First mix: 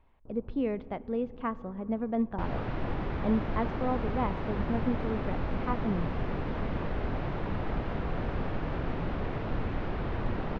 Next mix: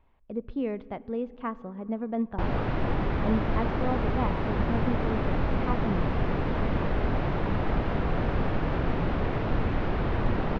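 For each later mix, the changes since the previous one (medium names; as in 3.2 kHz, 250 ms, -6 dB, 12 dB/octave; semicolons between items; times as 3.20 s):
first sound: muted; second sound +5.5 dB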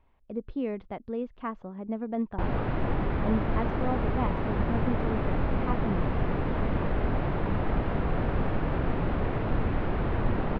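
background: add distance through air 180 m; reverb: off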